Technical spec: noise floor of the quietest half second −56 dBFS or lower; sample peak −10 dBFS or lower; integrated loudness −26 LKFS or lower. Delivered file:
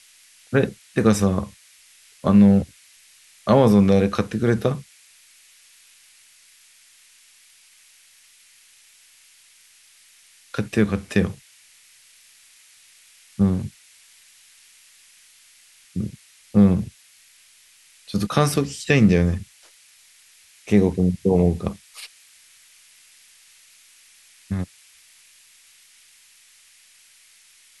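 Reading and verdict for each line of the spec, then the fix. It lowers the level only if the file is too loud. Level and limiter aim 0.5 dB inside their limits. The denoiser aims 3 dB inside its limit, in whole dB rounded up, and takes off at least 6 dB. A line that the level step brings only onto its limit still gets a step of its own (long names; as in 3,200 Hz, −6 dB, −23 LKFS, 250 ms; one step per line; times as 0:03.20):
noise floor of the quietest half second −54 dBFS: out of spec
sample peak −3.5 dBFS: out of spec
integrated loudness −20.5 LKFS: out of spec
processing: level −6 dB
brickwall limiter −10.5 dBFS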